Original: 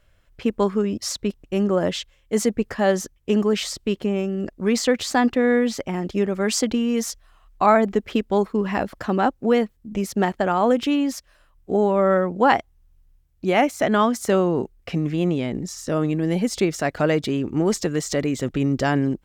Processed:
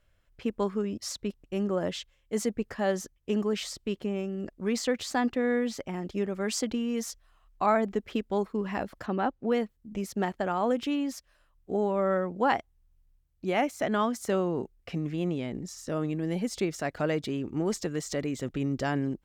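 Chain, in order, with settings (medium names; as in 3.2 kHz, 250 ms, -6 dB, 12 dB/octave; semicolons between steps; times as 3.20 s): 9.06–9.52 s: low-pass 4.1 kHz 12 dB/octave; trim -8.5 dB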